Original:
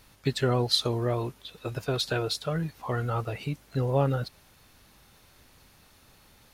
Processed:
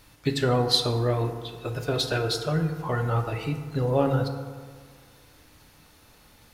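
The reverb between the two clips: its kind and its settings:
feedback delay network reverb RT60 1.7 s, low-frequency decay 0.95×, high-frequency decay 0.4×, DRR 4.5 dB
level +1.5 dB

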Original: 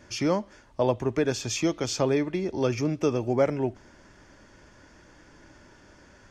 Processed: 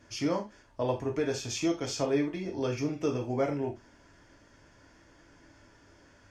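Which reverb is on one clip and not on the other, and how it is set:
reverb whose tail is shaped and stops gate 110 ms falling, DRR 0.5 dB
level −7.5 dB

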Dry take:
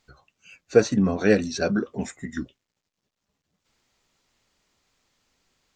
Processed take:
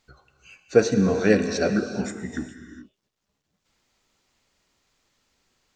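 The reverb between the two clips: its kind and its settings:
reverb whose tail is shaped and stops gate 460 ms flat, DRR 7 dB

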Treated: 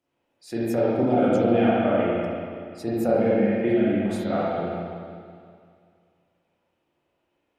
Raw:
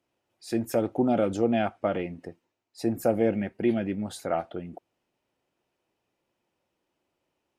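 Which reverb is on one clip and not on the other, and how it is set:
spring reverb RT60 2.2 s, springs 34/41/48 ms, chirp 35 ms, DRR −8 dB
level −3.5 dB

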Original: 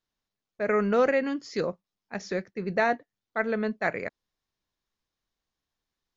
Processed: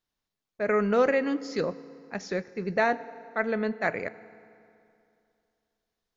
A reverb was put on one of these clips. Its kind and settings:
feedback delay network reverb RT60 2.6 s, high-frequency decay 0.75×, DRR 16 dB

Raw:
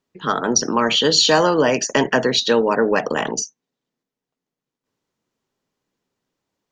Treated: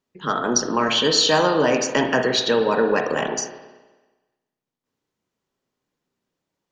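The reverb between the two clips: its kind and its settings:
spring reverb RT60 1.2 s, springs 33/53 ms, chirp 30 ms, DRR 5 dB
level −3 dB

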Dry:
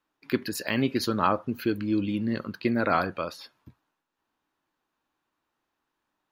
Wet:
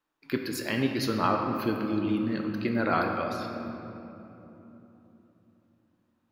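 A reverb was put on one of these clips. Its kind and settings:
rectangular room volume 180 cubic metres, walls hard, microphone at 0.35 metres
level −3 dB

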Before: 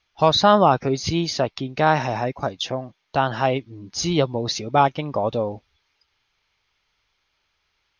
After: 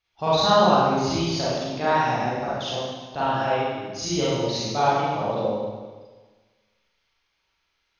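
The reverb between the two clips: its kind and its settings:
four-comb reverb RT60 1.4 s, combs from 33 ms, DRR −9.5 dB
level −11.5 dB

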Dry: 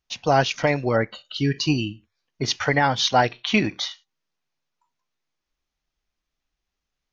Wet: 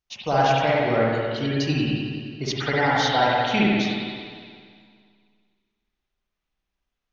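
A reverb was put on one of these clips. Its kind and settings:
spring reverb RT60 2 s, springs 53/58 ms, chirp 40 ms, DRR −5.5 dB
level −6 dB

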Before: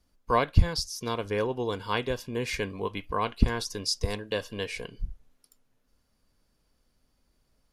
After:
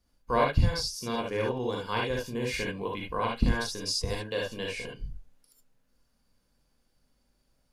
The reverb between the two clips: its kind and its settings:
reverb whose tail is shaped and stops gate 90 ms rising, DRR −2 dB
level −4.5 dB

